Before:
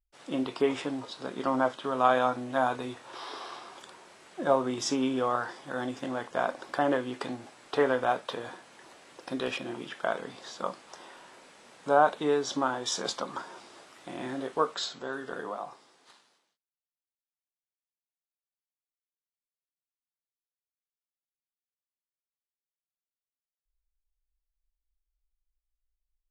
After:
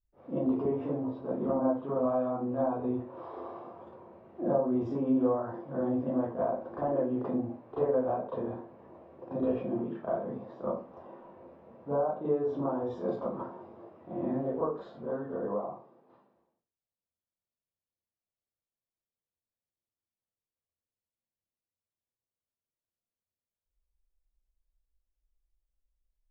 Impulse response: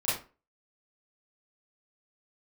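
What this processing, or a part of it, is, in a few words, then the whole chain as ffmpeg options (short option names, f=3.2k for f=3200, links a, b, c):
television next door: -filter_complex "[0:a]acompressor=threshold=-28dB:ratio=5,lowpass=480[a];[1:a]atrim=start_sample=2205[b];[a][b]afir=irnorm=-1:irlink=0"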